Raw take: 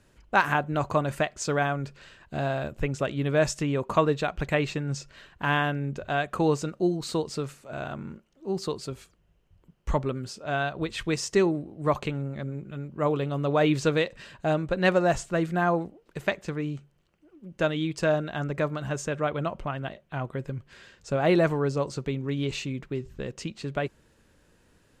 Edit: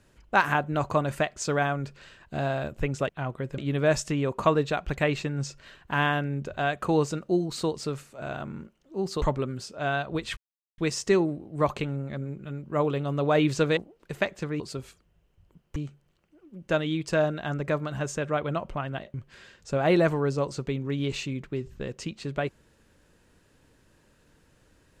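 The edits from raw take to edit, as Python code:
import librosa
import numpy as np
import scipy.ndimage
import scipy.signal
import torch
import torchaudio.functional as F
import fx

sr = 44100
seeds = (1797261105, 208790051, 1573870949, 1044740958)

y = fx.edit(x, sr, fx.move(start_s=8.73, length_s=1.16, to_s=16.66),
    fx.insert_silence(at_s=11.04, length_s=0.41),
    fx.cut(start_s=14.03, length_s=1.8),
    fx.move(start_s=20.04, length_s=0.49, to_s=3.09), tone=tone)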